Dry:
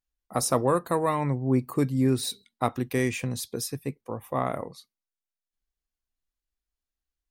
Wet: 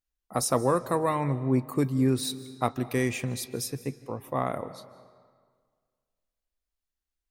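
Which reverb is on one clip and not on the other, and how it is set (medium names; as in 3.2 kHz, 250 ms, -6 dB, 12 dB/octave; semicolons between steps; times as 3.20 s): algorithmic reverb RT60 1.8 s, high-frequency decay 0.75×, pre-delay 115 ms, DRR 15.5 dB; trim -1 dB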